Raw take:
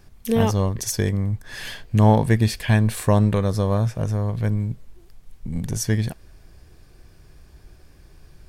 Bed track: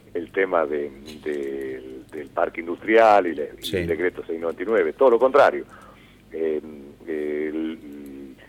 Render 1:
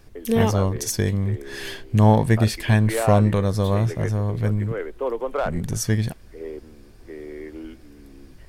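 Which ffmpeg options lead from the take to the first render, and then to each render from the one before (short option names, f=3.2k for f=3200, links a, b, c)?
-filter_complex "[1:a]volume=-10dB[a];[0:a][a]amix=inputs=2:normalize=0"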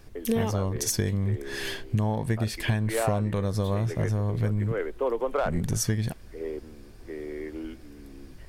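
-af "acompressor=threshold=-21dB:ratio=16"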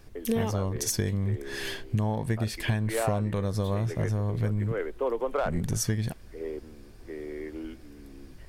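-af "volume=-1.5dB"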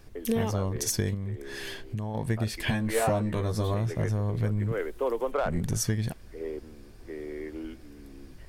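-filter_complex "[0:a]asettb=1/sr,asplit=3[a][b][c];[a]atrim=end=1.144[d];[b]atrim=start=1.14:end=2.15,asetpts=PTS-STARTPTS,afade=t=in:d=0.004:c=qsin,afade=t=out:st=1.006:d=0.004:c=qsin,acompressor=threshold=-39dB:ratio=1.5:attack=3.2:release=140:knee=1:detection=peak[e];[c]atrim=start=2.146[f];[d][e]acrossfade=d=0.004:c1=hsin:c2=qsin[g];[g][f]acrossfade=d=0.004:c1=qsin:c2=hsin,asettb=1/sr,asplit=3[h][i][j];[h]atrim=end=2.654[k];[i]atrim=start=2.65:end=3.74,asetpts=PTS-STARTPTS,afade=t=in:d=0.004:c=qsin,afade=t=out:st=1.086:d=0.004:c=qsin,asplit=2[l][m];[m]adelay=13,volume=-2dB[n];[l][n]amix=inputs=2:normalize=0,atrim=end_sample=48069[o];[j]atrim=start=3.736[p];[k][o]acrossfade=d=0.004:c1=hsin:c2=qsin[q];[q][p]acrossfade=d=0.004:c1=qsin:c2=hsin,asettb=1/sr,asplit=3[r][s][t];[r]atrim=end=4.724[u];[s]atrim=start=4.72:end=5.31,asetpts=PTS-STARTPTS,afade=t=in:d=0.004:c=qsin,afade=t=out:st=0.586:d=0.004:c=qsin,highshelf=f=5.9k:g=11[v];[t]atrim=start=5.306[w];[u][v]acrossfade=d=0.004:c1=hsin:c2=qsin[x];[x][w]acrossfade=d=0.004:c1=qsin:c2=hsin"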